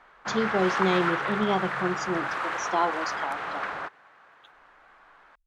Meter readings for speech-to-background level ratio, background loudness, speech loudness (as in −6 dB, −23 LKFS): 1.5 dB, −30.0 LKFS, −28.5 LKFS